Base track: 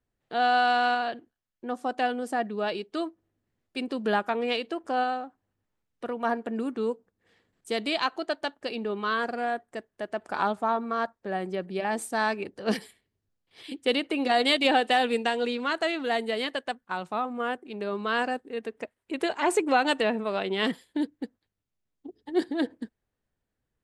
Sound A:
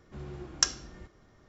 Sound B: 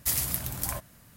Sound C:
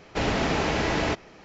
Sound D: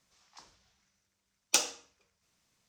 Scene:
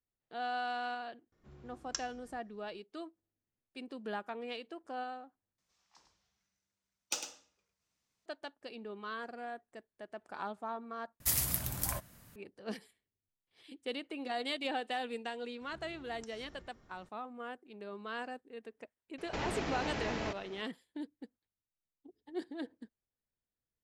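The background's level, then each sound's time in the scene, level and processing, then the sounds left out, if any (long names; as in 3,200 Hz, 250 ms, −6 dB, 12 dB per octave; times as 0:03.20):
base track −14 dB
0:01.32: mix in A −14 dB
0:05.58: overwrite with D −10.5 dB + single-tap delay 103 ms −9 dB
0:11.20: overwrite with B −3.5 dB
0:15.61: mix in A −4 dB + downward compressor 8 to 1, threshold −48 dBFS
0:19.18: mix in C −4 dB + downward compressor, threshold −30 dBFS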